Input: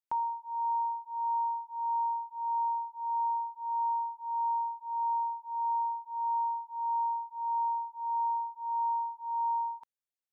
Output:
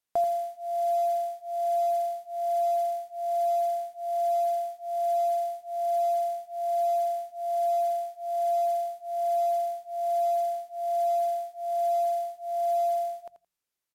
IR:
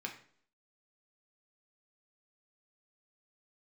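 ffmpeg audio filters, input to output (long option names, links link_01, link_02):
-filter_complex "[0:a]bandreject=frequency=60:width_type=h:width=6,bandreject=frequency=120:width_type=h:width=6,bandreject=frequency=180:width_type=h:width=6,bandreject=frequency=240:width_type=h:width=6,acrusher=bits=7:mode=log:mix=0:aa=0.000001,asplit=2[link_01][link_02];[link_02]aecho=0:1:63|126:0.251|0.0402[link_03];[link_01][link_03]amix=inputs=2:normalize=0,asetrate=32667,aresample=44100,volume=6.5dB"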